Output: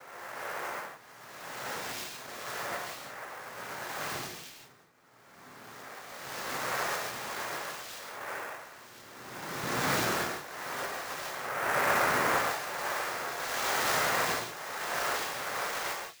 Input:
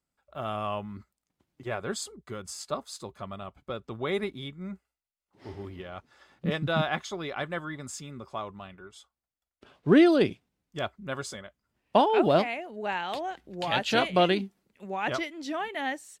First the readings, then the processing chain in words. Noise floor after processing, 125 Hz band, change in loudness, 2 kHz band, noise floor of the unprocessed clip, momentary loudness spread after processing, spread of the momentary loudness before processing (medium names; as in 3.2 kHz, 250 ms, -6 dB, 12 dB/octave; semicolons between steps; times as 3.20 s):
-55 dBFS, -10.0 dB, -4.0 dB, +2.5 dB, under -85 dBFS, 18 LU, 20 LU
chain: reverse spectral sustain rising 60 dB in 2.11 s; Chebyshev high-pass 790 Hz, order 2; overload inside the chain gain 18.5 dB; noise-vocoded speech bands 3; gated-style reverb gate 200 ms flat, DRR -0.5 dB; sampling jitter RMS 0.023 ms; trim -7.5 dB